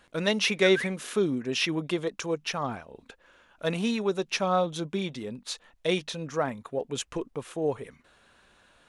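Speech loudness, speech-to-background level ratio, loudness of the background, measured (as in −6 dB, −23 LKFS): −29.0 LKFS, 7.5 dB, −36.5 LKFS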